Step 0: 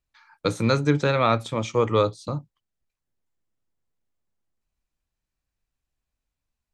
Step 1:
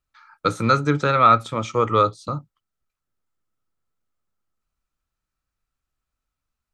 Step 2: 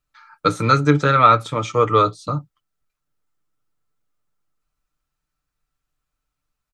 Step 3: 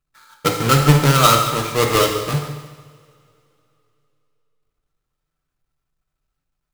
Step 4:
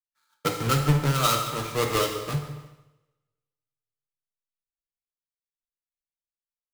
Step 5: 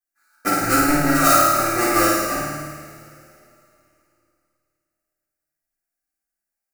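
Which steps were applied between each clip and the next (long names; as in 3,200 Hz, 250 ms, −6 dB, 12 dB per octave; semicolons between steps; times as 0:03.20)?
parametric band 1,300 Hz +14 dB 0.25 octaves
comb filter 6.7 ms, depth 48%; level +2 dB
each half-wave held at its own peak; echo machine with several playback heads 74 ms, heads first and second, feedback 54%, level −16.5 dB; coupled-rooms reverb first 0.95 s, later 3.3 s, from −24 dB, DRR 3 dB; level −5 dB
downward compressor 2.5 to 1, threshold −28 dBFS, peak gain reduction 14 dB; multiband upward and downward expander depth 100%
phaser with its sweep stopped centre 680 Hz, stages 8; on a send: flutter between parallel walls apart 9.3 metres, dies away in 1.1 s; on the sum: coupled-rooms reverb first 0.22 s, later 2.9 s, from −22 dB, DRR −9.5 dB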